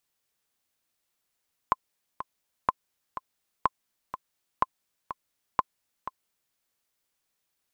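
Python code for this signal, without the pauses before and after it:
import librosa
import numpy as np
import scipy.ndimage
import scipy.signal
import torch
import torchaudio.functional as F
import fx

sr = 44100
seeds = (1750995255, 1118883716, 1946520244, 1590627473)

y = fx.click_track(sr, bpm=124, beats=2, bars=5, hz=1040.0, accent_db=12.0, level_db=-8.0)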